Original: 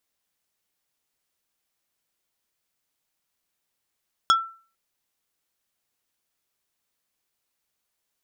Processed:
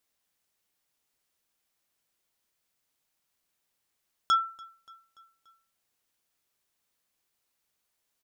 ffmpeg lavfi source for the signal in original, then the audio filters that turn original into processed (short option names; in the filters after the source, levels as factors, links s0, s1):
-f lavfi -i "aevalsrc='0.251*pow(10,-3*t/0.4)*sin(2*PI*1340*t)+0.141*pow(10,-3*t/0.133)*sin(2*PI*3350*t)+0.0794*pow(10,-3*t/0.076)*sin(2*PI*5360*t)+0.0447*pow(10,-3*t/0.058)*sin(2*PI*6700*t)+0.0251*pow(10,-3*t/0.042)*sin(2*PI*8710*t)':d=0.45:s=44100"
-af "alimiter=limit=0.158:level=0:latency=1:release=12,aecho=1:1:289|578|867|1156:0.0668|0.0388|0.0225|0.013"